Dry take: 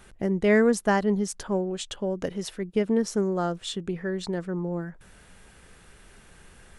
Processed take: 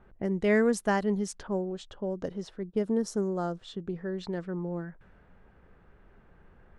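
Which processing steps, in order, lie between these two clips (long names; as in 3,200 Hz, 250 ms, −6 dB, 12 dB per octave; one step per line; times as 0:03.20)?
low-pass that shuts in the quiet parts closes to 1,100 Hz, open at −21.5 dBFS
0:01.47–0:04.18: parametric band 2,400 Hz −9.5 dB 1 octave
level −4 dB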